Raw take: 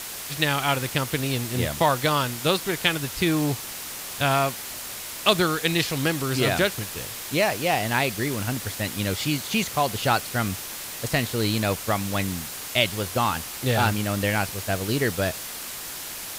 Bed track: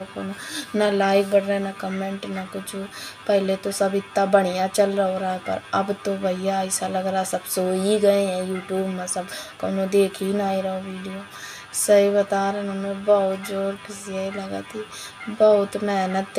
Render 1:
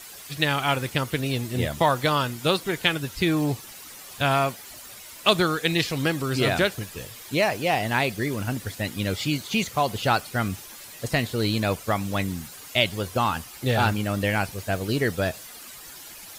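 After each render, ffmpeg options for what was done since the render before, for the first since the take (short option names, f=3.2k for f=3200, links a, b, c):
-af "afftdn=nr=11:nf=-36"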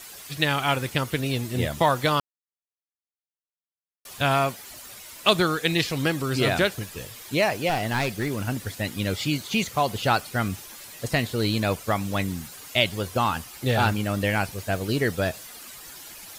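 -filter_complex "[0:a]asettb=1/sr,asplit=3[a][b][c];[a]atrim=end=7.694[d];[b]atrim=start=7.69:end=8.39,asetpts=PTS-STARTPTS,afade=t=in:d=0.004:c=qsin,afade=t=out:st=0.696:d=0.004:c=qsin,aeval=exprs='clip(val(0),-1,0.0531)':c=same[e];[c]atrim=start=8.386[f];[d][e]acrossfade=d=0.004:c1=hsin:c2=qsin[g];[g][f]acrossfade=d=0.004:c1=qsin:c2=hsin,asplit=3[h][i][j];[h]atrim=end=2.2,asetpts=PTS-STARTPTS,afade=t=out:st=2.196:d=0.004:c=hsin[k];[i]atrim=start=2.2:end=4.05,asetpts=PTS-STARTPTS,volume=0[l];[j]atrim=start=4.05,asetpts=PTS-STARTPTS,afade=t=in:d=0.004:c=hsin[m];[k][l][m]concat=n=3:v=0:a=1"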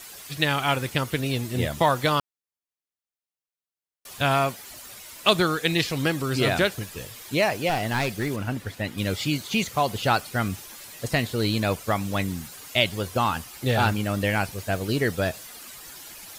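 -filter_complex "[0:a]asettb=1/sr,asplit=3[a][b][c];[a]atrim=end=8.364[d];[b]atrim=start=8.36:end=8.98,asetpts=PTS-STARTPTS,afade=t=in:d=0.004:c=qsin,afade=t=out:st=0.616:d=0.004:c=qsin,bass=f=250:g=-1,treble=f=4k:g=-8[e];[c]atrim=start=8.976[f];[d][e]acrossfade=d=0.004:c1=hsin:c2=qsin[g];[g][f]acrossfade=d=0.004:c1=qsin:c2=hsin"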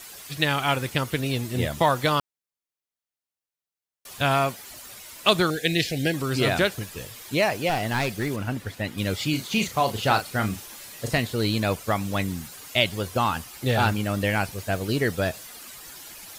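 -filter_complex "[0:a]asettb=1/sr,asplit=3[a][b][c];[a]atrim=end=5.504[d];[b]atrim=start=5.5:end=6.14,asetpts=PTS-STARTPTS,afade=t=in:d=0.004:c=qsin,afade=t=out:st=0.636:d=0.004:c=qsin,asuperstop=centerf=1100:order=8:qfactor=1.4[e];[c]atrim=start=6.136[f];[d][e]acrossfade=d=0.004:c1=hsin:c2=qsin[g];[g][f]acrossfade=d=0.004:c1=qsin:c2=hsin,asettb=1/sr,asplit=3[h][i][j];[h]atrim=end=9.304[k];[i]atrim=start=9.3:end=11.18,asetpts=PTS-STARTPTS,afade=t=in:d=0.004:c=qsin,afade=t=out:st=1.876:d=0.004:c=qsin,asplit=2[l][m];[m]adelay=37,volume=-8dB[n];[l][n]amix=inputs=2:normalize=0,atrim=end_sample=82908[o];[j]atrim=start=11.176[p];[k][o]acrossfade=d=0.004:c1=hsin:c2=qsin[q];[q][p]acrossfade=d=0.004:c1=qsin:c2=hsin"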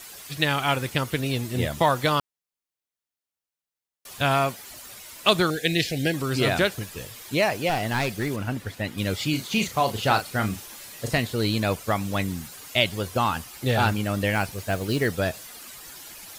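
-filter_complex "[0:a]asettb=1/sr,asplit=3[a][b][c];[a]atrim=end=14.354[d];[b]atrim=start=14.35:end=15.07,asetpts=PTS-STARTPTS,afade=t=in:d=0.004:c=qsin,afade=t=out:st=0.716:d=0.004:c=qsin,acrusher=bits=6:mode=log:mix=0:aa=0.000001[e];[c]atrim=start=15.066[f];[d][e]acrossfade=d=0.004:c1=hsin:c2=qsin[g];[g][f]acrossfade=d=0.004:c1=qsin:c2=hsin"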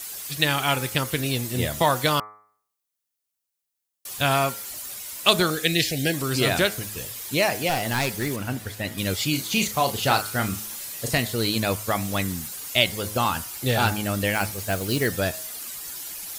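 -af "highshelf=f=5.3k:g=10,bandreject=f=106:t=h:w=4,bandreject=f=212:t=h:w=4,bandreject=f=318:t=h:w=4,bandreject=f=424:t=h:w=4,bandreject=f=530:t=h:w=4,bandreject=f=636:t=h:w=4,bandreject=f=742:t=h:w=4,bandreject=f=848:t=h:w=4,bandreject=f=954:t=h:w=4,bandreject=f=1.06k:t=h:w=4,bandreject=f=1.166k:t=h:w=4,bandreject=f=1.272k:t=h:w=4,bandreject=f=1.378k:t=h:w=4,bandreject=f=1.484k:t=h:w=4,bandreject=f=1.59k:t=h:w=4,bandreject=f=1.696k:t=h:w=4,bandreject=f=1.802k:t=h:w=4,bandreject=f=1.908k:t=h:w=4,bandreject=f=2.014k:t=h:w=4,bandreject=f=2.12k:t=h:w=4,bandreject=f=2.226k:t=h:w=4,bandreject=f=2.332k:t=h:w=4"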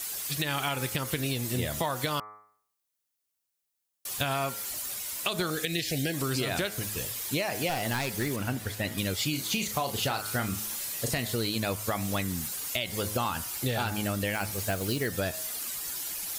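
-af "alimiter=limit=-12dB:level=0:latency=1:release=149,acompressor=threshold=-26dB:ratio=6"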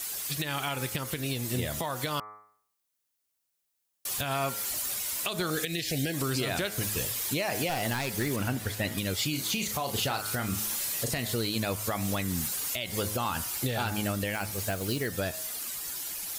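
-af "dynaudnorm=f=270:g=21:m=3dB,alimiter=limit=-19dB:level=0:latency=1:release=248"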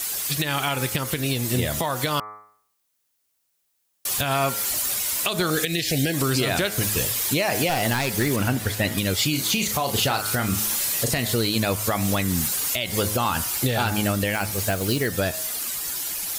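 -af "volume=7.5dB"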